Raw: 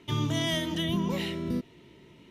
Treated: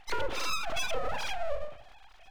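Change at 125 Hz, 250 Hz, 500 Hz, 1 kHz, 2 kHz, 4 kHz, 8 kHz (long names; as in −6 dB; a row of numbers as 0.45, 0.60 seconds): −17.5, −21.5, 0.0, +4.5, +1.5, −5.0, +1.5 decibels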